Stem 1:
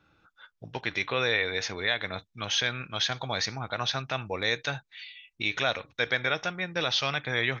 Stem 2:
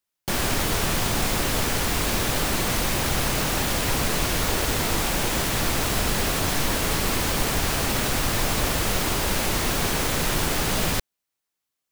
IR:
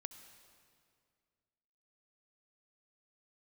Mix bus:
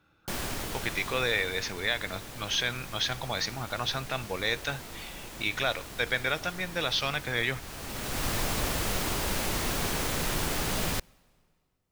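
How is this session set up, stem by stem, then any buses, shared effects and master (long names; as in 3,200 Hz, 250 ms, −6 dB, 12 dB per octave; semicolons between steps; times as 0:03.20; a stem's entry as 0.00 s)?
−1.5 dB, 0.00 s, no send, no processing
−7.0 dB, 0.00 s, send −15 dB, automatic ducking −17 dB, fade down 1.75 s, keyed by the first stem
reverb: on, RT60 2.2 s, pre-delay 61 ms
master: no processing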